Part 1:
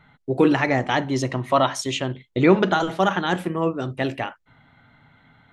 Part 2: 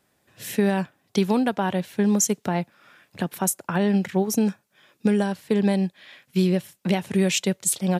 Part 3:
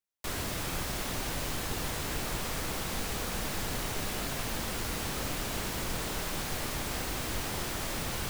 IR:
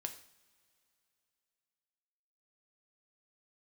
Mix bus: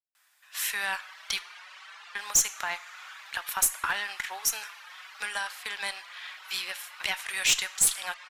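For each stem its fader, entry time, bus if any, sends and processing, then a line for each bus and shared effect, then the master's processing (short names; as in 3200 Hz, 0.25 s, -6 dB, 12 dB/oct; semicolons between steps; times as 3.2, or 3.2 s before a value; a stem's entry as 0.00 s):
off
+1.5 dB, 0.15 s, muted 1.39–2.15, send -3.5 dB, dry
+1.0 dB, 0.30 s, no send, reverb removal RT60 0.94 s; LPF 3000 Hz 12 dB/oct; endless flanger 5 ms +1.5 Hz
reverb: on, pre-delay 3 ms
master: HPF 1100 Hz 24 dB/oct; tube stage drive 15 dB, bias 0.25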